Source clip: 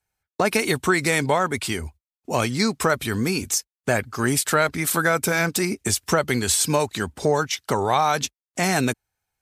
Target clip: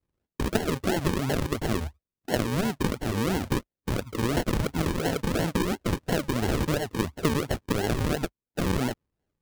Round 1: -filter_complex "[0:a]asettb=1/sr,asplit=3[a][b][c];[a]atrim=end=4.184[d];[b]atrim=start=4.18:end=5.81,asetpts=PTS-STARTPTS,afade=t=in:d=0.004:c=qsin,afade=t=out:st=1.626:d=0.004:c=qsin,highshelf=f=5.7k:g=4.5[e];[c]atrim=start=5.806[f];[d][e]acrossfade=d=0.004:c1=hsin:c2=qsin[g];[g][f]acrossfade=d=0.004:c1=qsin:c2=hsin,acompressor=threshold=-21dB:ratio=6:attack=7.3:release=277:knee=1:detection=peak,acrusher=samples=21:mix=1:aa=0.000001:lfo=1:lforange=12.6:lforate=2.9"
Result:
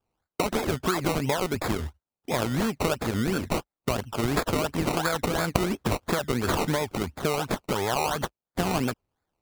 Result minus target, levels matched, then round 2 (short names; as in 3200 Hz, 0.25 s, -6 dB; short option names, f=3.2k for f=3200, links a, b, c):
decimation with a swept rate: distortion -8 dB
-filter_complex "[0:a]asettb=1/sr,asplit=3[a][b][c];[a]atrim=end=4.184[d];[b]atrim=start=4.18:end=5.81,asetpts=PTS-STARTPTS,afade=t=in:d=0.004:c=qsin,afade=t=out:st=1.626:d=0.004:c=qsin,highshelf=f=5.7k:g=4.5[e];[c]atrim=start=5.806[f];[d][e]acrossfade=d=0.004:c1=hsin:c2=qsin[g];[g][f]acrossfade=d=0.004:c1=qsin:c2=hsin,acompressor=threshold=-21dB:ratio=6:attack=7.3:release=277:knee=1:detection=peak,acrusher=samples=51:mix=1:aa=0.000001:lfo=1:lforange=30.6:lforate=2.9"